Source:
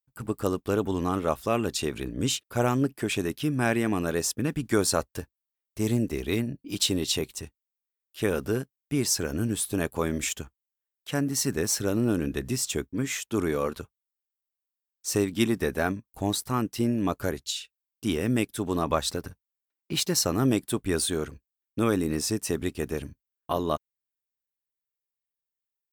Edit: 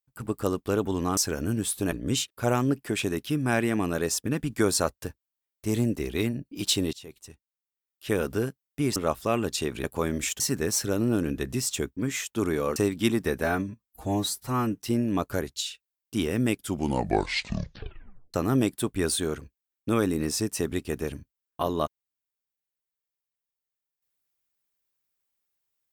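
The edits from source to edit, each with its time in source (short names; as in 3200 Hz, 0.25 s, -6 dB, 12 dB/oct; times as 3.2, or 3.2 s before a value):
1.17–2.05 swap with 9.09–9.84
7.06–8.27 fade in, from -23 dB
10.4–11.36 cut
13.72–15.12 cut
15.8–16.72 stretch 1.5×
18.43 tape stop 1.81 s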